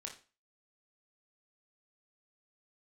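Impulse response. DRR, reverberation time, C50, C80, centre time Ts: 0.5 dB, 0.35 s, 9.0 dB, 15.5 dB, 18 ms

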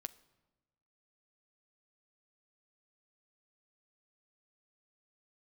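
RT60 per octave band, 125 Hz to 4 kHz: 1.5 s, 1.3 s, 1.2 s, 1.1 s, 0.90 s, 0.75 s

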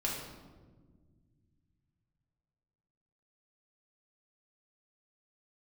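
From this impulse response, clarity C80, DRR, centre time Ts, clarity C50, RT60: 4.5 dB, -4.0 dB, 60 ms, 2.0 dB, 1.5 s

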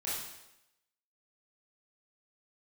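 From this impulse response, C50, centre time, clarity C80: 0.0 dB, 70 ms, 3.5 dB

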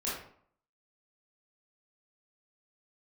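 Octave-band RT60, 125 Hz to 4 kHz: 0.60 s, 0.60 s, 0.60 s, 0.60 s, 0.45 s, 0.40 s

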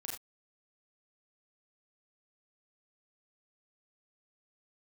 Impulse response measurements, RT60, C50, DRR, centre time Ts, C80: no single decay rate, 3.5 dB, -2.5 dB, 38 ms, 7.0 dB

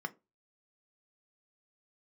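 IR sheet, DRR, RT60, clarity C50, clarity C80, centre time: 7.0 dB, 0.25 s, 23.5 dB, 30.0 dB, 3 ms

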